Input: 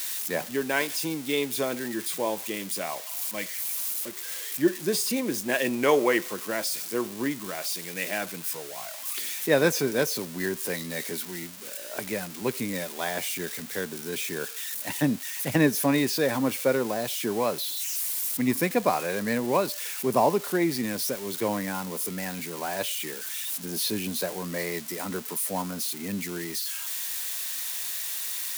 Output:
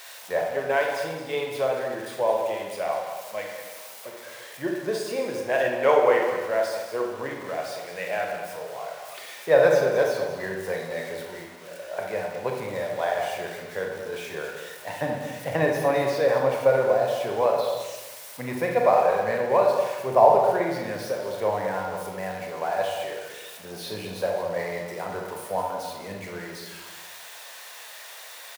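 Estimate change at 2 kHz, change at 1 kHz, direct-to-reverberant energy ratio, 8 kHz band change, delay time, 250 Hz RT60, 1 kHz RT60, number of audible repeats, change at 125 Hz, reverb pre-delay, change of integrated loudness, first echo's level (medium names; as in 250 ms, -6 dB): 0.0 dB, +6.5 dB, 0.0 dB, -11.5 dB, 213 ms, 1.4 s, 1.1 s, 1, -2.0 dB, 28 ms, +2.0 dB, -11.0 dB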